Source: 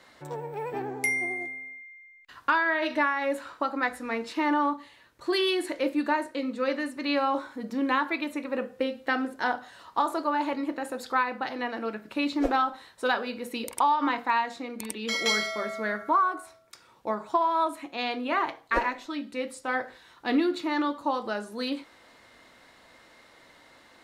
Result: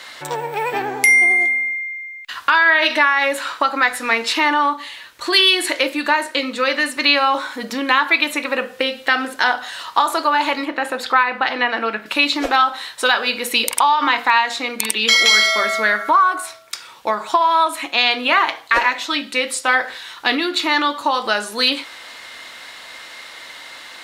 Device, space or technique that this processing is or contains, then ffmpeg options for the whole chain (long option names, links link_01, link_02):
mastering chain: -filter_complex "[0:a]asettb=1/sr,asplit=3[link_01][link_02][link_03];[link_01]atrim=end=10.654[link_04];[link_02]atrim=start=10.65:end=12.06,asetpts=PTS-STARTPTS,afade=type=in:duration=0.004:curve=qsin,afade=type=out:start_time=1.406:duration=0.004:curve=qsin,bass=frequency=250:gain=1,treble=frequency=4000:gain=-12[link_05];[link_03]atrim=start=12.056[link_06];[link_04][link_05]acrossfade=duration=0.004:curve1=hsin:curve2=qsin[link_07];[link_07][link_06]acrossfade=duration=0.004:curve1=qsin:curve2=hsin,equalizer=frequency=3200:width_type=o:width=0.89:gain=3.5,acompressor=threshold=-29dB:ratio=2.5,tiltshelf=frequency=650:gain=-8.5,asoftclip=type=hard:threshold=-10dB,alimiter=level_in=13dB:limit=-1dB:release=50:level=0:latency=1,volume=-1dB"